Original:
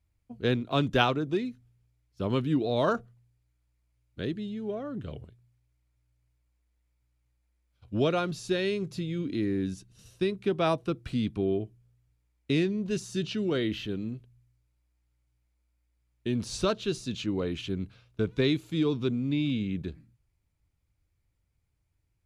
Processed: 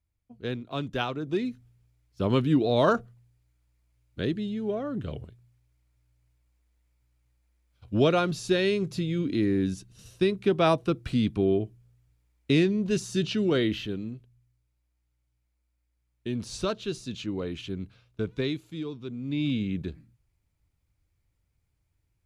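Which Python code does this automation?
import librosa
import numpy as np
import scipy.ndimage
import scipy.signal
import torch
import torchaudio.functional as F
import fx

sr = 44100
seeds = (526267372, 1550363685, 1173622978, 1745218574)

y = fx.gain(x, sr, db=fx.line((1.09, -6.0), (1.49, 4.0), (13.61, 4.0), (14.15, -2.0), (18.3, -2.0), (19.02, -10.5), (19.46, 1.5)))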